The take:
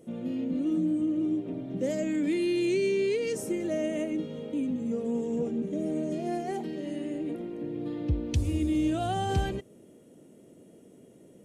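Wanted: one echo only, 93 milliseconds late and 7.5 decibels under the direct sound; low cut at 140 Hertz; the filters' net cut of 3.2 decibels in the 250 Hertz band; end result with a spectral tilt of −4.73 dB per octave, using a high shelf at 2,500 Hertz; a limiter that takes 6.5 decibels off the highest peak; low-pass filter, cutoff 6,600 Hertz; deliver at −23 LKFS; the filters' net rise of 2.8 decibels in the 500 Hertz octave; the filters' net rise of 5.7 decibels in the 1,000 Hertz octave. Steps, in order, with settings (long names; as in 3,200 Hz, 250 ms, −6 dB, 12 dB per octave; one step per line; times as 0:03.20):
high-pass filter 140 Hz
low-pass filter 6,600 Hz
parametric band 250 Hz −7 dB
parametric band 500 Hz +5 dB
parametric band 1,000 Hz +6 dB
high-shelf EQ 2,500 Hz +5 dB
brickwall limiter −23.5 dBFS
single-tap delay 93 ms −7.5 dB
level +9 dB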